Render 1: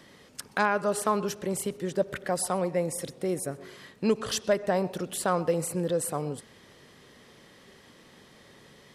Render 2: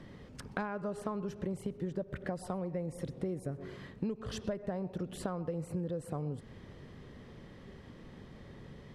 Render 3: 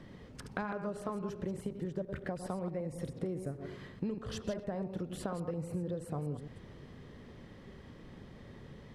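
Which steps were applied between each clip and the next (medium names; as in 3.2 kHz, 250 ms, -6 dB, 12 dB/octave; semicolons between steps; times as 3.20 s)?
RIAA curve playback; compression 10:1, threshold -31 dBFS, peak gain reduction 17.5 dB; trim -2 dB
chunks repeated in reverse 108 ms, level -8 dB; trim -1 dB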